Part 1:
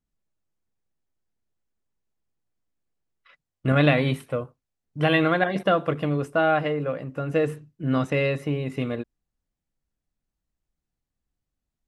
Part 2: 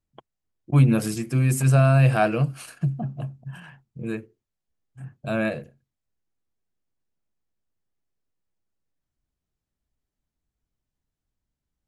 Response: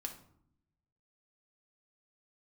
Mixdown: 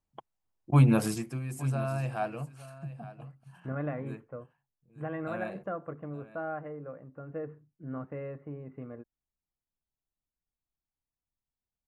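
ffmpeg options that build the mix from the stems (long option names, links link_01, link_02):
-filter_complex "[0:a]lowpass=frequency=1600:width=0.5412,lowpass=frequency=1600:width=1.3066,volume=-15dB[link_01];[1:a]equalizer=frequency=880:width_type=o:width=0.93:gain=8.5,volume=-4dB,afade=type=out:start_time=1.11:duration=0.29:silence=0.237137,asplit=2[link_02][link_03];[link_03]volume=-16.5dB,aecho=0:1:864:1[link_04];[link_01][link_02][link_04]amix=inputs=3:normalize=0"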